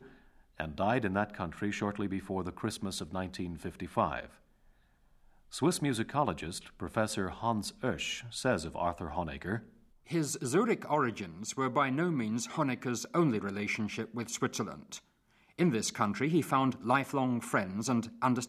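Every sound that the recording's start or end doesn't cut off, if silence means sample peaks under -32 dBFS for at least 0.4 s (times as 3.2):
0.6–4.24
5.55–9.57
10.12–14.95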